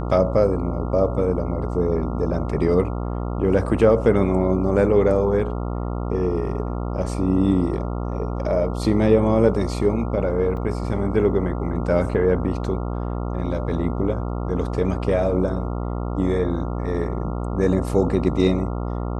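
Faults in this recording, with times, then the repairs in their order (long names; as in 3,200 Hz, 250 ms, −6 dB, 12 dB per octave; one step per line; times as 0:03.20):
mains buzz 60 Hz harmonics 23 −26 dBFS
0:10.57: drop-out 2.3 ms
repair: hum removal 60 Hz, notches 23
repair the gap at 0:10.57, 2.3 ms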